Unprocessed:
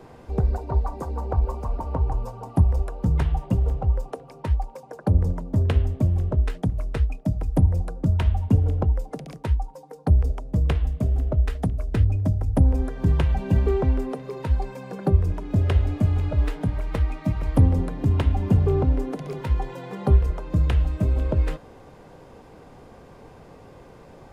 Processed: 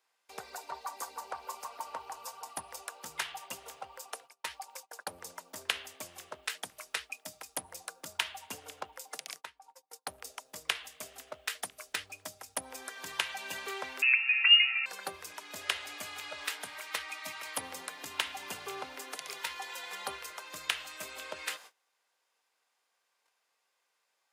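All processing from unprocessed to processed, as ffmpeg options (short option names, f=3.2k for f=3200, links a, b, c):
-filter_complex "[0:a]asettb=1/sr,asplit=3[a][b][c];[a]atrim=end=9.414[d];[b]atrim=start=9.41:end=9.9,asetpts=PTS-STARTPTS,afade=t=in:d=0.004:c=qsin,afade=t=out:st=0.486:d=0.004:c=qsin,highshelf=f=2.7k:g=-9,acompressor=threshold=-31dB:ratio=8:attack=3.2:release=140:knee=1:detection=peak[e];[c]atrim=start=9.896[f];[d][e]acrossfade=d=0.004:c1=hsin:c2=qsin[g];[g][f]acrossfade=d=0.004:c1=qsin:c2=hsin,asettb=1/sr,asplit=3[h][i][j];[h]atrim=end=14.024[k];[i]atrim=start=14.02:end=14.86,asetpts=PTS-STARTPTS,afade=t=in:d=0.004:c=qsin,afade=t=out:st=0.836:d=0.004:c=qsin,highpass=f=130:p=1,highshelf=f=2.3k:g=9,lowpass=f=2.5k:t=q:w=0.5098,lowpass=f=2.5k:t=q:w=0.6013,lowpass=f=2.5k:t=q:w=0.9,lowpass=f=2.5k:t=q:w=2.563,afreqshift=-2900[l];[j]atrim=start=14.856[m];[k][l]acrossfade=d=0.004:c1=hsin:c2=qsin[n];[n][m]acrossfade=d=0.004:c1=qsin:c2=hsin,highshelf=f=3.2k:g=10.5,agate=range=-25dB:threshold=-40dB:ratio=16:detection=peak,highpass=1.5k,volume=2.5dB"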